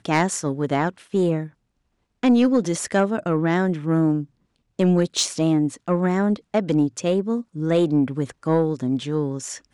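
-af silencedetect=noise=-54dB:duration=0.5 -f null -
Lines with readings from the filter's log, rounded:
silence_start: 1.54
silence_end: 2.23 | silence_duration: 0.70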